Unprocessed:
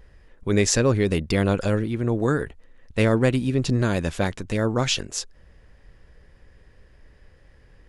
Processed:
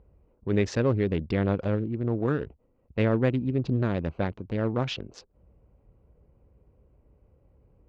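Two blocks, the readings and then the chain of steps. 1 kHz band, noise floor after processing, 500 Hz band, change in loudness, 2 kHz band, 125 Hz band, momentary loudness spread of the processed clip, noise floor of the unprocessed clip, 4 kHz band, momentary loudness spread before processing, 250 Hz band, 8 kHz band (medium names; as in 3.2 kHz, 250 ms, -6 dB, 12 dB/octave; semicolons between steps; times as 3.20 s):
-5.5 dB, -67 dBFS, -4.5 dB, -4.5 dB, -8.0 dB, -4.0 dB, 9 LU, -54 dBFS, -11.5 dB, 12 LU, -4.0 dB, under -20 dB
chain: local Wiener filter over 25 samples; high-pass 52 Hz; distance through air 240 m; trim -3.5 dB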